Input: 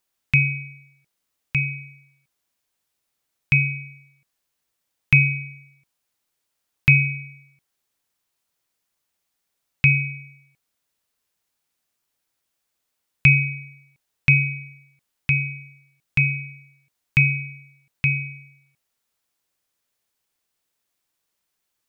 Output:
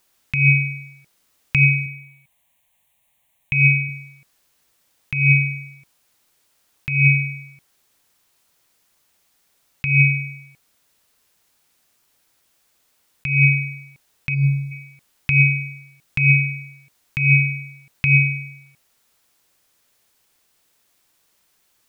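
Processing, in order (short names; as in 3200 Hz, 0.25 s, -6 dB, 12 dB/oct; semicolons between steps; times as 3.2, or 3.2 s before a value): 1.86–3.89 fixed phaser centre 1400 Hz, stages 6; negative-ratio compressor -24 dBFS, ratio -1; 14.34–14.71 spectral gain 920–3200 Hz -18 dB; gain +8.5 dB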